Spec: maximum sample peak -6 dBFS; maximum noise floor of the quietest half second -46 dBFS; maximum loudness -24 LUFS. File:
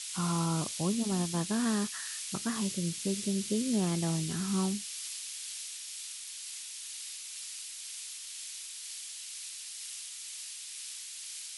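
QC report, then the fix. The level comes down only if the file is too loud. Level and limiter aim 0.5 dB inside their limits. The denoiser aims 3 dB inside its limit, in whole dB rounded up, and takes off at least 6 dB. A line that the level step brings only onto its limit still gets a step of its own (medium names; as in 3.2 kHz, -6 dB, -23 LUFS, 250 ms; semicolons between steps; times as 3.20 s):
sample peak -19.0 dBFS: pass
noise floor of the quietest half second -43 dBFS: fail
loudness -34.5 LUFS: pass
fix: noise reduction 6 dB, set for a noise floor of -43 dBFS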